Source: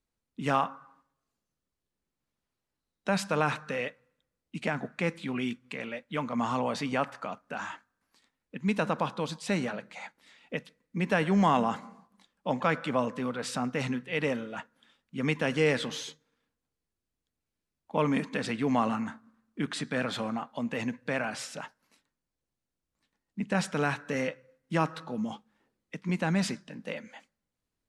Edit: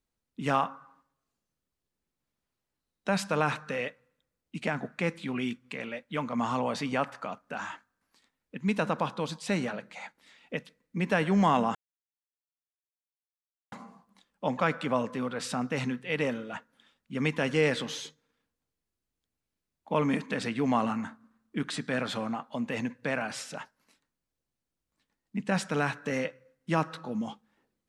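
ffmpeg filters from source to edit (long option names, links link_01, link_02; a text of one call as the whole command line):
ffmpeg -i in.wav -filter_complex "[0:a]asplit=2[link_01][link_02];[link_01]atrim=end=11.75,asetpts=PTS-STARTPTS,afade=type=out:start_time=11.746:duration=0.004:curve=hsin,apad=pad_dur=1.97[link_03];[link_02]atrim=start=11.75,asetpts=PTS-STARTPTS,afade=type=in:duration=0.004:curve=hsin[link_04];[link_03][link_04]concat=n=2:v=0:a=1" out.wav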